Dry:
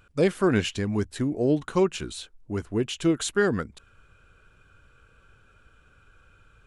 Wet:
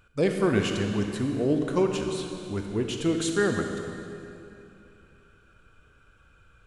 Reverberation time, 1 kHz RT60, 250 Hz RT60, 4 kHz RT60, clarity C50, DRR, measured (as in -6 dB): 2.8 s, 2.7 s, 3.0 s, 2.2 s, 4.0 dB, 3.5 dB